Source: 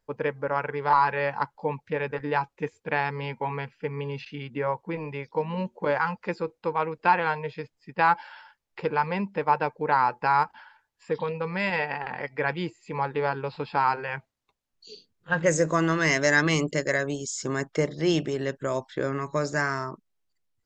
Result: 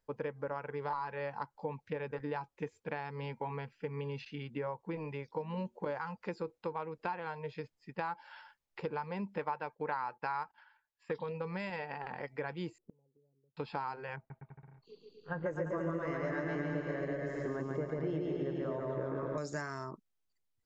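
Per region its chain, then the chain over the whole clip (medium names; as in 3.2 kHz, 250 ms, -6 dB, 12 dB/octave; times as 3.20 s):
9.39–11.17 s: gate -47 dBFS, range -13 dB + peaking EQ 1.9 kHz +8.5 dB 2.9 oct
12.78–13.57 s: inverse Chebyshev low-pass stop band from 2.5 kHz, stop band 70 dB + low-pass that closes with the level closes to 340 Hz, closed at -28.5 dBFS + inverted gate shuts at -32 dBFS, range -33 dB
14.16–19.38 s: low-pass 1.6 kHz + bouncing-ball echo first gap 140 ms, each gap 0.8×, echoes 9, each echo -2 dB
whole clip: compression 4:1, threshold -28 dBFS; dynamic bell 2.2 kHz, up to -5 dB, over -43 dBFS, Q 0.74; trim -5.5 dB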